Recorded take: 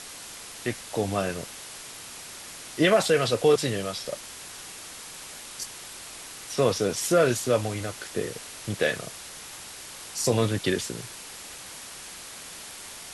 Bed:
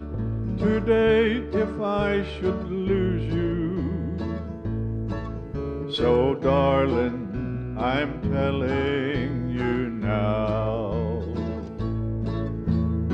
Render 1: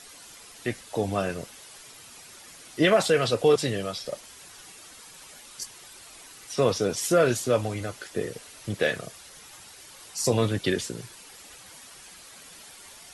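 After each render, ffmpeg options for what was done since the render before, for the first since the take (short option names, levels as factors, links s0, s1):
-af "afftdn=nr=9:nf=-42"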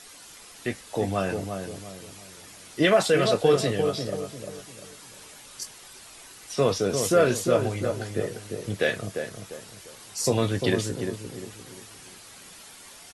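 -filter_complex "[0:a]asplit=2[s0][s1];[s1]adelay=21,volume=0.251[s2];[s0][s2]amix=inputs=2:normalize=0,asplit=2[s3][s4];[s4]adelay=348,lowpass=f=930:p=1,volume=0.562,asplit=2[s5][s6];[s6]adelay=348,lowpass=f=930:p=1,volume=0.4,asplit=2[s7][s8];[s8]adelay=348,lowpass=f=930:p=1,volume=0.4,asplit=2[s9][s10];[s10]adelay=348,lowpass=f=930:p=1,volume=0.4,asplit=2[s11][s12];[s12]adelay=348,lowpass=f=930:p=1,volume=0.4[s13];[s5][s7][s9][s11][s13]amix=inputs=5:normalize=0[s14];[s3][s14]amix=inputs=2:normalize=0"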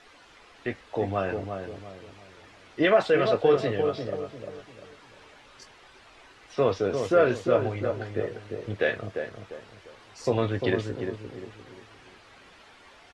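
-af "lowpass=2600,equalizer=f=170:t=o:w=0.86:g=-7.5"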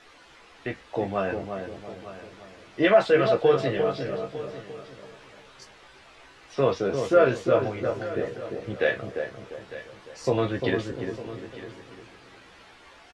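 -filter_complex "[0:a]asplit=2[s0][s1];[s1]adelay=15,volume=0.562[s2];[s0][s2]amix=inputs=2:normalize=0,aecho=1:1:902:0.168"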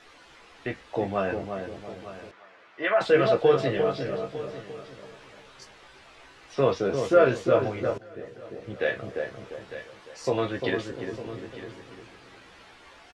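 -filter_complex "[0:a]asettb=1/sr,asplit=3[s0][s1][s2];[s0]atrim=end=2.314[s3];[s1]atrim=start=2.31:end=3.01,asetpts=PTS-STARTPTS,afade=t=in:d=0.004:c=qsin,afade=t=out:st=0.696:d=0.004:c=qsin,bandpass=f=1400:t=q:w=1[s4];[s2]atrim=start=3.006[s5];[s3][s4]acrossfade=d=0.004:c1=hsin:c2=qsin[s6];[s6][s5]acrossfade=d=0.004:c1=qsin:c2=hsin,asettb=1/sr,asplit=3[s7][s8][s9];[s7]atrim=end=9.844[s10];[s8]atrim=start=9.84:end=11.13,asetpts=PTS-STARTPTS,afade=t=in:d=0.004:c=qsin,afade=t=out:st=1.286:d=0.004:c=qsin,lowshelf=f=270:g=-6.5[s11];[s9]atrim=start=11.126[s12];[s10][s11]acrossfade=d=0.004:c1=hsin:c2=qsin[s13];[s13][s12]acrossfade=d=0.004:c1=qsin:c2=hsin,asplit=2[s14][s15];[s14]atrim=end=7.98,asetpts=PTS-STARTPTS,afade=t=out:st=7.976:d=0.004:c=hsin:silence=0.133352[s16];[s15]atrim=start=7.98,asetpts=PTS-STARTPTS,afade=t=in:d=1.31:silence=0.133352[s17];[s16][s17]concat=n=2:v=0:a=1"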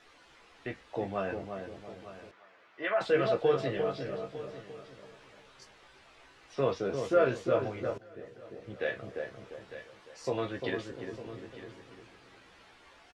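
-af "volume=0.473"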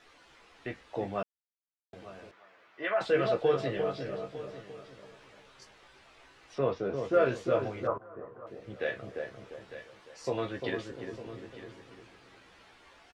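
-filter_complex "[0:a]asettb=1/sr,asplit=3[s0][s1][s2];[s0]atrim=end=6.584[s3];[s1]atrim=start=6.58:end=7.14,asetpts=PTS-STARTPTS,afade=t=in:d=0.004:c=qsin,afade=t=out:st=0.556:d=0.004:c=qsin,aemphasis=mode=reproduction:type=75kf[s4];[s2]atrim=start=7.136[s5];[s3][s4]acrossfade=d=0.004:c1=hsin:c2=qsin[s6];[s6][s5]acrossfade=d=0.004:c1=qsin:c2=hsin,asettb=1/sr,asplit=3[s7][s8][s9];[s7]atrim=end=7.874[s10];[s8]atrim=start=7.87:end=8.47,asetpts=PTS-STARTPTS,afade=t=in:d=0.004:c=qsin,afade=t=out:st=0.596:d=0.004:c=qsin,lowpass=f=1100:t=q:w=7.4[s11];[s9]atrim=start=8.466[s12];[s10][s11]acrossfade=d=0.004:c1=hsin:c2=qsin[s13];[s13][s12]acrossfade=d=0.004:c1=qsin:c2=hsin,asplit=3[s14][s15][s16];[s14]atrim=end=1.23,asetpts=PTS-STARTPTS,afade=t=out:st=1.226:d=0.004:c=hsin[s17];[s15]atrim=start=1.23:end=1.93,asetpts=PTS-STARTPTS,volume=0[s18];[s16]atrim=start=1.93,asetpts=PTS-STARTPTS,afade=t=in:d=0.004:c=hsin[s19];[s17][s18][s19]concat=n=3:v=0:a=1"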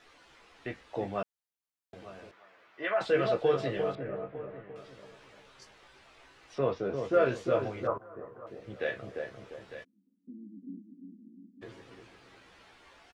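-filter_complex "[0:a]asettb=1/sr,asplit=3[s0][s1][s2];[s0]atrim=end=3.954[s3];[s1]atrim=start=3.95:end=4.76,asetpts=PTS-STARTPTS,afade=t=in:d=0.004:c=qsin,afade=t=out:st=0.806:d=0.004:c=qsin,lowpass=f=2200:w=0.5412,lowpass=f=2200:w=1.3066[s4];[s2]atrim=start=4.756[s5];[s3][s4]acrossfade=d=0.004:c1=hsin:c2=qsin[s6];[s6][s5]acrossfade=d=0.004:c1=qsin:c2=hsin,asplit=3[s7][s8][s9];[s7]afade=t=out:st=9.83:d=0.02[s10];[s8]asuperpass=centerf=230:order=8:qfactor=2.2,afade=t=in:st=9.83:d=0.02,afade=t=out:st=11.61:d=0.02[s11];[s9]afade=t=in:st=11.61:d=0.02[s12];[s10][s11][s12]amix=inputs=3:normalize=0"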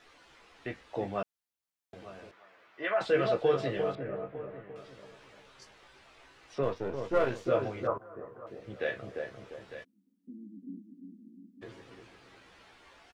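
-filter_complex "[0:a]asettb=1/sr,asplit=3[s0][s1][s2];[s0]atrim=end=6.634[s3];[s1]atrim=start=6.63:end=7.47,asetpts=PTS-STARTPTS,afade=t=in:d=0.004:c=qsin,afade=t=out:st=0.836:d=0.004:c=qsin,aeval=exprs='if(lt(val(0),0),0.447*val(0),val(0))':c=same[s4];[s2]atrim=start=7.466[s5];[s3][s4]acrossfade=d=0.004:c1=hsin:c2=qsin[s6];[s6][s5]acrossfade=d=0.004:c1=qsin:c2=hsin"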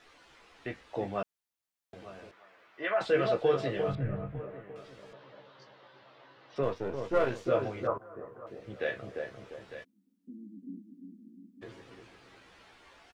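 -filter_complex "[0:a]asplit=3[s0][s1][s2];[s0]afade=t=out:st=3.87:d=0.02[s3];[s1]asubboost=boost=11:cutoff=130,afade=t=in:st=3.87:d=0.02,afade=t=out:st=4.39:d=0.02[s4];[s2]afade=t=in:st=4.39:d=0.02[s5];[s3][s4][s5]amix=inputs=3:normalize=0,asettb=1/sr,asplit=3[s6][s7][s8];[s6]atrim=end=5.134[s9];[s7]atrim=start=5.13:end=6.56,asetpts=PTS-STARTPTS,afade=t=in:d=0.004:c=qsin,afade=t=out:st=1.426:d=0.004:c=qsin,highpass=f=120:w=0.5412,highpass=f=120:w=1.3066,equalizer=f=130:t=q:w=4:g=8,equalizer=f=290:t=q:w=4:g=3,equalizer=f=560:t=q:w=4:g=8,equalizer=f=990:t=q:w=4:g=4,equalizer=f=2400:t=q:w=4:g=-7,lowpass=f=4300:w=0.5412,lowpass=f=4300:w=1.3066[s10];[s8]atrim=start=6.556[s11];[s9][s10]acrossfade=d=0.004:c1=hsin:c2=qsin[s12];[s12][s11]acrossfade=d=0.004:c1=qsin:c2=hsin"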